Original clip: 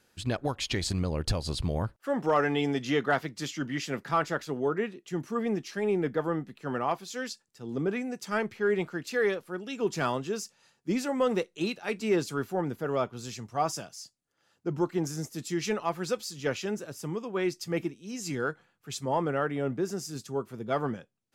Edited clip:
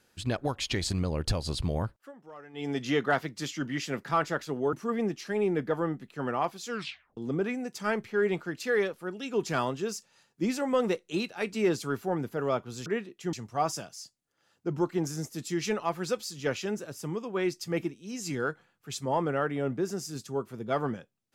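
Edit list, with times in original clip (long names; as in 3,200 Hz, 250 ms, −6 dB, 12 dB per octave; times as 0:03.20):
0:01.75–0:02.90: duck −22.5 dB, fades 0.37 s equal-power
0:04.73–0:05.20: move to 0:13.33
0:07.16: tape stop 0.48 s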